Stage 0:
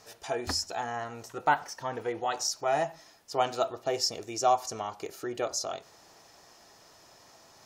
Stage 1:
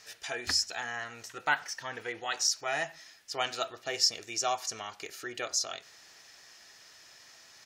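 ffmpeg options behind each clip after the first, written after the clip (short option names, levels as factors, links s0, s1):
-af "firequalizer=gain_entry='entry(930,0);entry(1700,14);entry(12000,7)':delay=0.05:min_phase=1,volume=0.398"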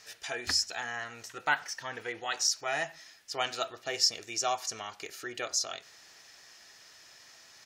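-af anull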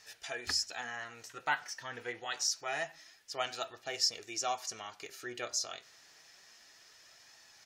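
-af "flanger=delay=1.1:depth=7.3:regen=68:speed=0.27:shape=sinusoidal"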